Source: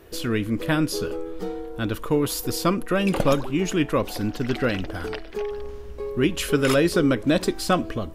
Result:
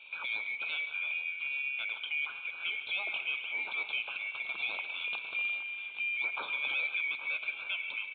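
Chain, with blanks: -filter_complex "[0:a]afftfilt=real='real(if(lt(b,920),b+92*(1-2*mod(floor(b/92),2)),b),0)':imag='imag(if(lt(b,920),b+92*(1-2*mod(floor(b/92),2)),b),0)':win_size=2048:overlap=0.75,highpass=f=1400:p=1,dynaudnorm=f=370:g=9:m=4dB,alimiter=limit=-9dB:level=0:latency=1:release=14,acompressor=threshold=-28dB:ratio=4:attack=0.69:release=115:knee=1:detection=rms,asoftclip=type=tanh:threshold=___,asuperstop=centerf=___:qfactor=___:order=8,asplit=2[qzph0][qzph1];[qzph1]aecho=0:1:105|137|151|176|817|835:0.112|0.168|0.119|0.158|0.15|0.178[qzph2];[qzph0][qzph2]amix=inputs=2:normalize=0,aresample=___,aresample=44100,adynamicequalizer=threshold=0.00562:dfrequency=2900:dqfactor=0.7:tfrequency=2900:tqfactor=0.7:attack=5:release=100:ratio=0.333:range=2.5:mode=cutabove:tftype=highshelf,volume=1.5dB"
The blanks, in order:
-22dB, 1900, 2.8, 8000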